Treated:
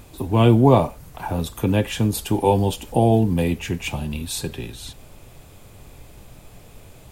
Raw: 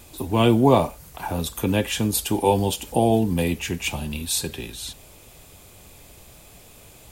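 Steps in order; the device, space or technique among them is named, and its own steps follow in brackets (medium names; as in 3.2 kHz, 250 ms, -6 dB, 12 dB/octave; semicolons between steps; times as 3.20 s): car interior (peaking EQ 120 Hz +5.5 dB 0.54 oct; treble shelf 2.7 kHz -7 dB; brown noise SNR 24 dB); trim +1.5 dB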